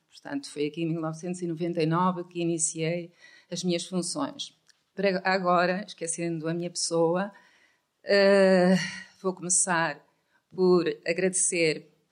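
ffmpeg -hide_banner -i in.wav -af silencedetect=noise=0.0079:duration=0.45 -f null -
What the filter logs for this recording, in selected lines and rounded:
silence_start: 7.30
silence_end: 8.05 | silence_duration: 0.74
silence_start: 9.98
silence_end: 10.54 | silence_duration: 0.57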